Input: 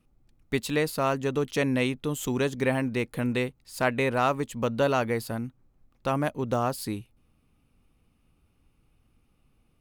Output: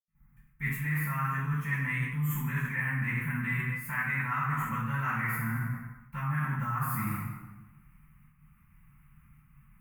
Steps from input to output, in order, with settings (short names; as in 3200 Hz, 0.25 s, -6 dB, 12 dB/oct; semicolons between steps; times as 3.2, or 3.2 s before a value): gate with hold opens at -56 dBFS; EQ curve 100 Hz 0 dB, 150 Hz +12 dB, 390 Hz -21 dB, 640 Hz -22 dB, 1000 Hz +3 dB, 2000 Hz +11 dB, 4000 Hz -20 dB, 8900 Hz -1 dB, 14000 Hz +13 dB; reverb RT60 1.2 s, pre-delay 73 ms; reverse; compressor 6:1, threshold -33 dBFS, peak gain reduction 16 dB; reverse; bell 10000 Hz -2.5 dB 0.41 oct; gain +4 dB